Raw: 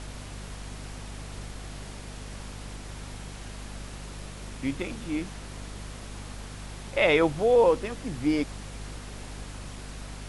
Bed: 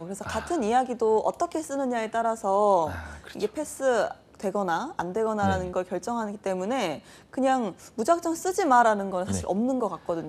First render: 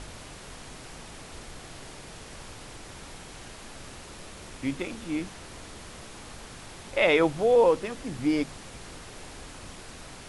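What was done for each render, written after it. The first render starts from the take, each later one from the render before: de-hum 50 Hz, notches 5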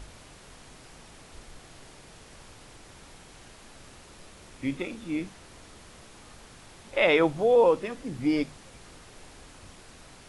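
noise print and reduce 6 dB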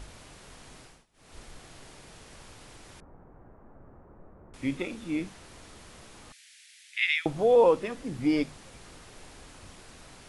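0.8–1.39 dip -23 dB, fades 0.26 s; 3–4.54 Bessel low-pass 860 Hz, order 6; 6.32–7.26 steep high-pass 1800 Hz 48 dB/oct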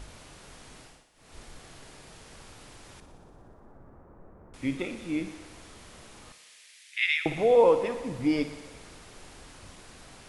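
thinning echo 60 ms, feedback 78%, high-pass 170 Hz, level -12.5 dB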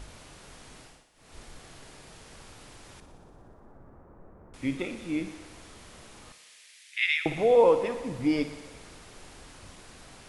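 nothing audible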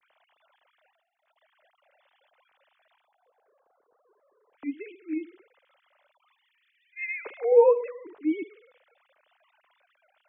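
sine-wave speech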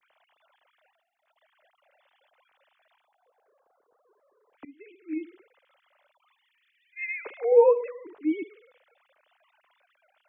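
4.65–5.23 fade in, from -22.5 dB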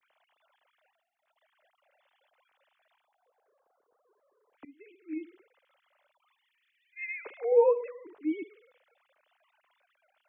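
gain -4.5 dB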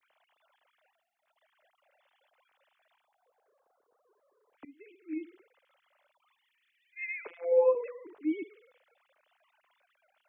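7.27–7.75 robotiser 171 Hz

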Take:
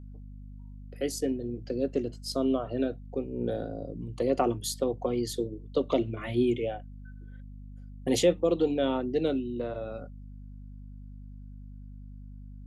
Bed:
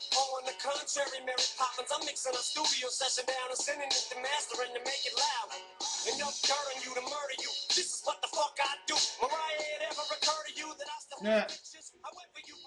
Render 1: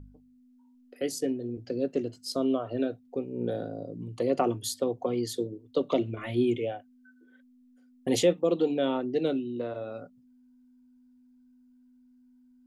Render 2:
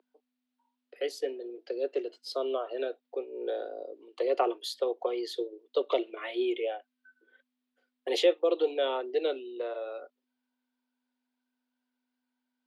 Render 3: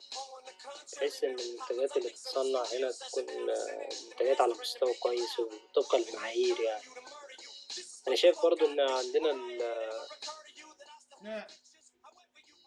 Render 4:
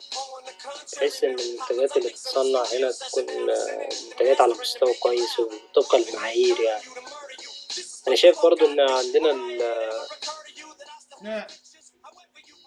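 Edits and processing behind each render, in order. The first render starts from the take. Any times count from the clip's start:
de-hum 50 Hz, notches 4
steep high-pass 360 Hz 48 dB/oct; resonant high shelf 5200 Hz -10.5 dB, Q 1.5
add bed -12 dB
gain +9.5 dB

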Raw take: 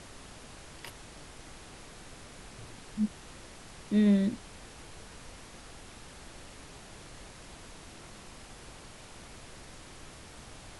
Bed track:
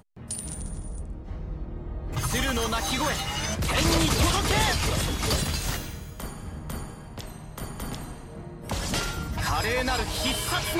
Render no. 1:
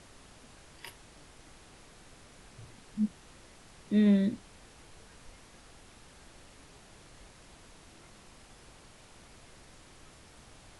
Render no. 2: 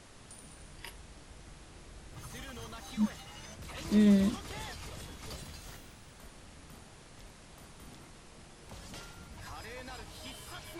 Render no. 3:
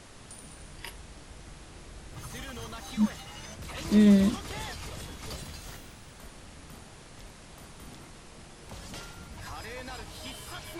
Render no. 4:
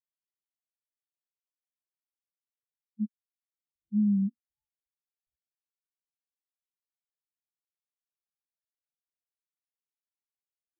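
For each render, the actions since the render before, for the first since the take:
noise print and reduce 6 dB
add bed track -19.5 dB
gain +4.5 dB
level quantiser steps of 13 dB; spectral expander 4:1

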